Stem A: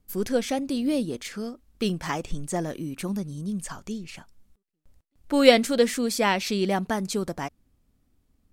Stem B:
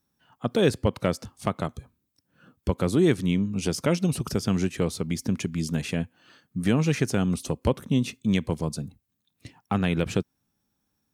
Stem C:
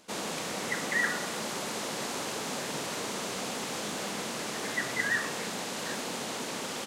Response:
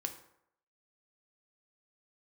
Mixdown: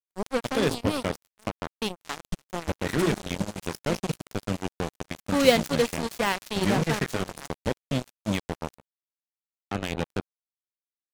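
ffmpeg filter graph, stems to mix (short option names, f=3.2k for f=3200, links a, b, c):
-filter_complex "[0:a]volume=-3.5dB[a];[1:a]equalizer=f=1.1k:t=o:w=0.39:g=-5,bandreject=f=60:t=h:w=6,bandreject=f=120:t=h:w=6,bandreject=f=180:t=h:w=6,bandreject=f=240:t=h:w=6,bandreject=f=300:t=h:w=6,bandreject=f=360:t=h:w=6,bandreject=f=420:t=h:w=6,bandreject=f=480:t=h:w=6,adynamicequalizer=threshold=0.00794:dfrequency=280:dqfactor=5:tfrequency=280:tqfactor=5:attack=5:release=100:ratio=0.375:range=2.5:mode=cutabove:tftype=bell,volume=-3.5dB[b];[2:a]adelay=1900,volume=-9dB[c];[a][b][c]amix=inputs=3:normalize=0,bandreject=f=60:t=h:w=6,bandreject=f=120:t=h:w=6,acrusher=bits=3:mix=0:aa=0.5"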